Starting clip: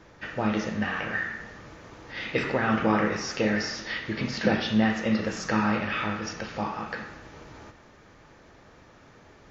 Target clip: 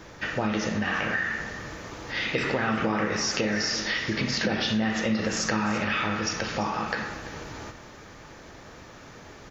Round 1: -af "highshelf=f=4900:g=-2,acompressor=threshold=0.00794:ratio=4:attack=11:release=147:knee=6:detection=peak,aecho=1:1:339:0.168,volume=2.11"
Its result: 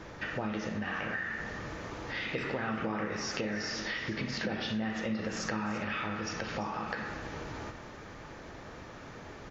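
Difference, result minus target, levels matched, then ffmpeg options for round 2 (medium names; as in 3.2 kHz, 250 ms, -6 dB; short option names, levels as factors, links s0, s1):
compression: peak gain reduction +8 dB; 8 kHz band -3.0 dB
-af "highshelf=f=4900:g=8.5,acompressor=threshold=0.0266:ratio=4:attack=11:release=147:knee=6:detection=peak,aecho=1:1:339:0.168,volume=2.11"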